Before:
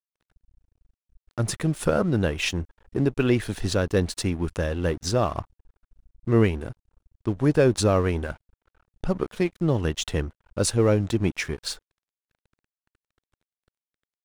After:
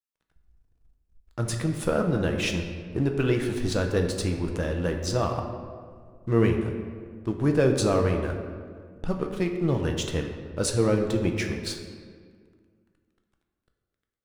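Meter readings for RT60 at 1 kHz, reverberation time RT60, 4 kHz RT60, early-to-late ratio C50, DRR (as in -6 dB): 1.7 s, 1.9 s, 1.1 s, 6.0 dB, 3.0 dB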